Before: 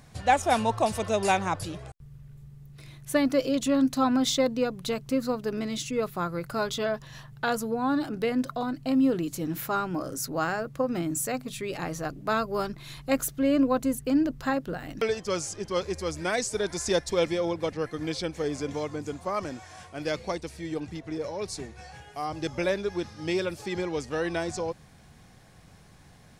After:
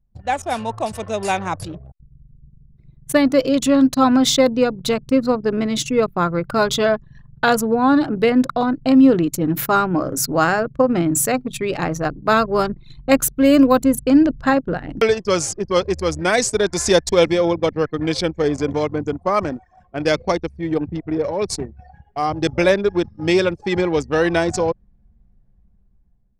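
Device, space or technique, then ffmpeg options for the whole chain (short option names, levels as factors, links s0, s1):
voice memo with heavy noise removal: -filter_complex "[0:a]asettb=1/sr,asplit=3[s0][s1][s2];[s0]atrim=end=13.364[s3];[s1]atrim=start=13.36:end=13.83,asetpts=PTS-STARTPTS,afade=t=in:d=0.004:c=qsin,afade=t=out:st=0.466:d=0.004:c=qsin,aemphasis=mode=production:type=50fm[s4];[s2]atrim=start=13.826[s5];[s3][s4]acrossfade=d=0.004:c1=hsin:c2=qsin[s6];[s6][s5]acrossfade=d=0.004:c1=qsin:c2=hsin,anlmdn=2.51,dynaudnorm=f=640:g=5:m=4.47"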